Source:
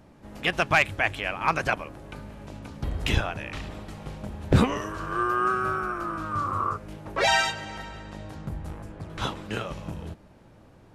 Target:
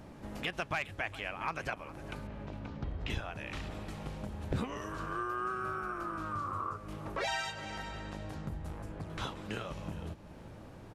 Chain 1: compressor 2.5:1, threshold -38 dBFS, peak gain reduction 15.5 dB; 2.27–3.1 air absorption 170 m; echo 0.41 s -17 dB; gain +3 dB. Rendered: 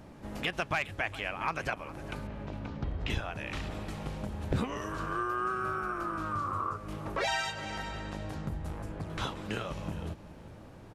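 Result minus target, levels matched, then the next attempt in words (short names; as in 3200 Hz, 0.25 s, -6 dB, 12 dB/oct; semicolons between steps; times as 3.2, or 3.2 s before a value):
compressor: peak gain reduction -3.5 dB
compressor 2.5:1, threshold -44 dBFS, peak gain reduction 19.5 dB; 2.27–3.1 air absorption 170 m; echo 0.41 s -17 dB; gain +3 dB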